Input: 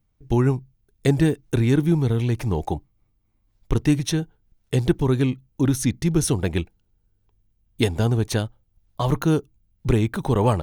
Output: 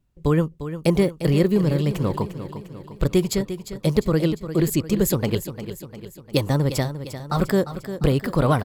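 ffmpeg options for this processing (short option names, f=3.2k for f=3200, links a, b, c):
-af "aecho=1:1:431|862|1293|1724|2155|2586:0.266|0.141|0.0747|0.0396|0.021|0.0111,asetrate=54243,aresample=44100"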